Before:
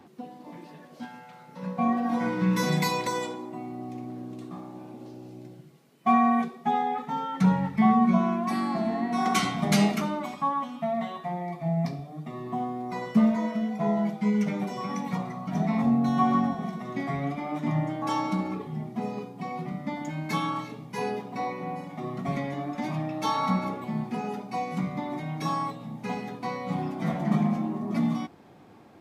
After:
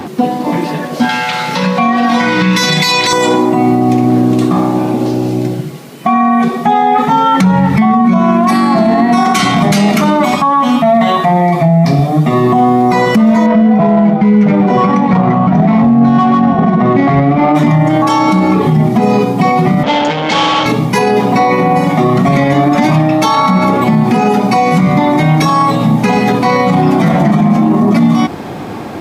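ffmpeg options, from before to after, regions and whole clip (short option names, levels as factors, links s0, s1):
-filter_complex "[0:a]asettb=1/sr,asplit=3[s0][s1][s2];[s0]atrim=end=1.094[s3];[s1]atrim=start=1.09:end=3.13,asetpts=PTS-STARTPTS,afade=t=in:d=0.004:c=qsin,afade=t=out:st=2.036:d=0.004:c=qsin,equalizer=f=3600:w=0.48:g=14.5,acompressor=threshold=0.00891:ratio=3:attack=3.2:release=140:knee=1:detection=peak[s4];[s2]atrim=start=3.126[s5];[s3][s4]acrossfade=d=0.004:c1=hsin:c2=qsin[s6];[s6][s5]acrossfade=d=0.004:c1=qsin:c2=hsin,asettb=1/sr,asplit=3[s7][s8][s9];[s7]atrim=end=13.464[s10];[s8]atrim=start=13.46:end=17.55,asetpts=PTS-STARTPTS,afade=t=in:d=0.004:c=qsin,afade=t=out:st=4.086:d=0.004:c=qsin,acrusher=bits=8:mode=log:mix=0:aa=0.000001,adynamicsmooth=sensitivity=2:basefreq=1500[s11];[s9]atrim=start=17.546[s12];[s10][s11]acrossfade=d=0.004:c1=hsin:c2=qsin[s13];[s13][s12]acrossfade=d=0.004:c1=qsin:c2=hsin,asettb=1/sr,asplit=3[s14][s15][s16];[s14]atrim=end=19.834[s17];[s15]atrim=start=19.83:end=20.66,asetpts=PTS-STARTPTS,afade=t=in:d=0.004:c=qsin,afade=t=out:st=0.826:d=0.004:c=qsin,aeval=exprs='(tanh(126*val(0)+0.7)-tanh(0.7))/126':c=same,highpass=110,equalizer=f=150:t=q:w=4:g=-7,equalizer=f=530:t=q:w=4:g=8,equalizer=f=830:t=q:w=4:g=8,equalizer=f=3200:t=q:w=4:g=10,lowpass=f=6300:w=0.5412,lowpass=f=6300:w=1.3066[s18];[s16]atrim=start=20.656[s19];[s17][s18]acrossfade=d=0.004:c1=hsin:c2=qsin[s20];[s20][s19]acrossfade=d=0.004:c1=qsin:c2=hsin,acompressor=threshold=0.0355:ratio=6,alimiter=level_in=33.5:limit=0.891:release=50:level=0:latency=1,volume=0.891"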